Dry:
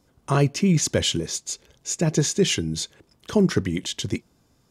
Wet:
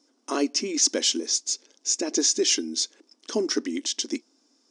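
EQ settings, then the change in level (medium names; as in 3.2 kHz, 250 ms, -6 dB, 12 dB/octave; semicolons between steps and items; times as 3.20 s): brick-wall FIR band-pass 220–10000 Hz; peaking EQ 290 Hz +7.5 dB 0.52 oct; peaking EQ 5.5 kHz +14.5 dB 0.65 oct; -5.5 dB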